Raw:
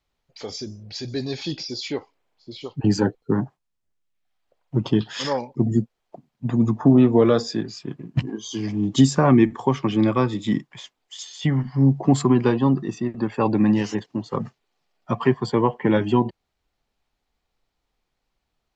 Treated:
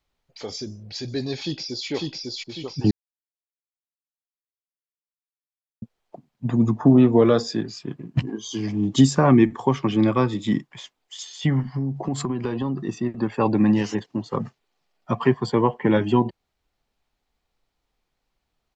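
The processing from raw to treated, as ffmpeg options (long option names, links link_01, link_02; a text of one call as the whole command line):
ffmpeg -i in.wav -filter_complex "[0:a]asplit=2[link_01][link_02];[link_02]afade=type=in:start_time=1.39:duration=0.01,afade=type=out:start_time=1.88:duration=0.01,aecho=0:1:550|1100|1650|2200|2750|3300:0.841395|0.378628|0.170383|0.0766721|0.0345025|0.0155261[link_03];[link_01][link_03]amix=inputs=2:normalize=0,asettb=1/sr,asplit=3[link_04][link_05][link_06];[link_04]atrim=end=11.604[link_07];[link_05]atrim=start=11.6:end=12.87,asetpts=PTS-STARTPTS,afade=type=in:duration=0.004:curve=qsin,afade=type=out:start_time=1.266:duration=0.004:curve=qsin,acompressor=threshold=-21dB:ratio=10:attack=3.2:release=140:knee=1:detection=peak[link_08];[link_06]atrim=start=12.866[link_09];[link_07][link_08]acrossfade=duration=0.004:curve1=hsin:curve2=qsin[link_10];[link_10][link_09]acrossfade=duration=0.004:curve1=qsin:curve2=hsin,asplit=3[link_11][link_12][link_13];[link_11]atrim=end=2.91,asetpts=PTS-STARTPTS,afade=type=out:start_time=2.906:duration=0.004:curve=hsin[link_14];[link_12]atrim=start=2.91:end=5.82,asetpts=PTS-STARTPTS,volume=0[link_15];[link_13]atrim=start=5.82,asetpts=PTS-STARTPTS,afade=type=in:duration=0.004:curve=hsin[link_16];[link_14][link_15][link_16]concat=n=3:v=0:a=1" out.wav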